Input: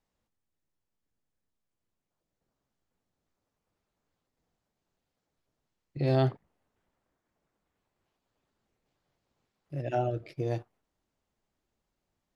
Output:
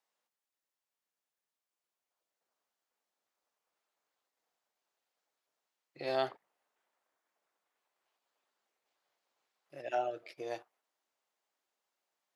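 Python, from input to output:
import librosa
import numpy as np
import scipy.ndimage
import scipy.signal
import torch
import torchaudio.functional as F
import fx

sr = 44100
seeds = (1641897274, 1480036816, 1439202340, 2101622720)

y = scipy.signal.sosfilt(scipy.signal.butter(2, 650.0, 'highpass', fs=sr, output='sos'), x)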